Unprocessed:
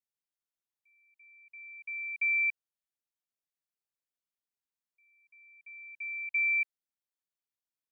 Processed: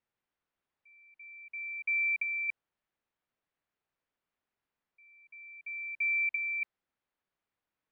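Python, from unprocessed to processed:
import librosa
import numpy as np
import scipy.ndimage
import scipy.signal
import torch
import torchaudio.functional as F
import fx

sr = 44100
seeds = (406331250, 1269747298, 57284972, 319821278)

y = scipy.signal.sosfilt(scipy.signal.butter(2, 2200.0, 'lowpass', fs=sr, output='sos'), x)
y = fx.over_compress(y, sr, threshold_db=-36.0, ratio=-0.5)
y = y * 10.0 ** (7.5 / 20.0)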